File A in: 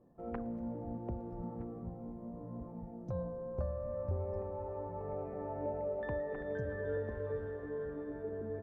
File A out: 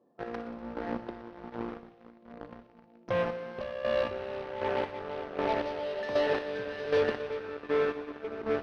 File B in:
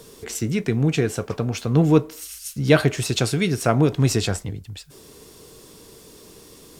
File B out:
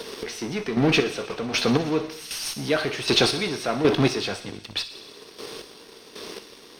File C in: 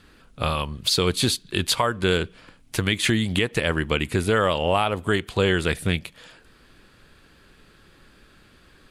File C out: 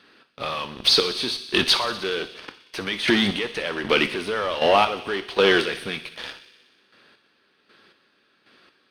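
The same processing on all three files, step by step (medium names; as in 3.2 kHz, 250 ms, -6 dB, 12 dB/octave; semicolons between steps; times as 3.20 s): high-pass 280 Hz 12 dB/octave; treble shelf 3 kHz +4.5 dB; in parallel at -9 dB: fuzz box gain 39 dB, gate -44 dBFS; on the sum: Savitzky-Golay filter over 15 samples; square tremolo 1.3 Hz, depth 65%, duty 30%; on a send: feedback echo behind a high-pass 61 ms, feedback 76%, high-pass 2.8 kHz, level -12.5 dB; on the sum: two-slope reverb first 0.66 s, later 2.6 s, from -27 dB, DRR 11 dB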